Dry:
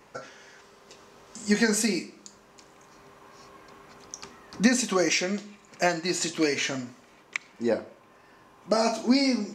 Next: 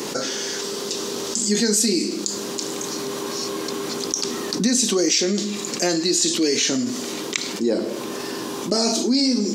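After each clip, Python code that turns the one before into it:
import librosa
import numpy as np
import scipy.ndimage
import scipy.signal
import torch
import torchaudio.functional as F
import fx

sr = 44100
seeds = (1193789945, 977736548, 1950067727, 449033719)

y = scipy.signal.sosfilt(scipy.signal.butter(2, 280.0, 'highpass', fs=sr, output='sos'), x)
y = fx.band_shelf(y, sr, hz=1200.0, db=-13.5, octaves=2.6)
y = fx.env_flatten(y, sr, amount_pct=70)
y = y * librosa.db_to_amplitude(4.0)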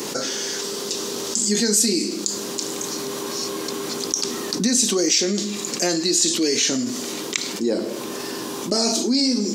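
y = fx.high_shelf(x, sr, hz=6500.0, db=5.0)
y = y * librosa.db_to_amplitude(-1.0)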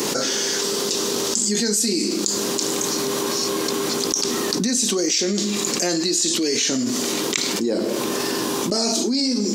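y = fx.env_flatten(x, sr, amount_pct=70)
y = y * librosa.db_to_amplitude(-3.5)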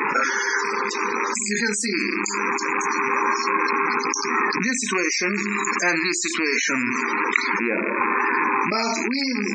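y = fx.rattle_buzz(x, sr, strikes_db=-32.0, level_db=-18.0)
y = fx.band_shelf(y, sr, hz=1400.0, db=14.5, octaves=1.7)
y = fx.spec_topn(y, sr, count=64)
y = y * librosa.db_to_amplitude(-3.5)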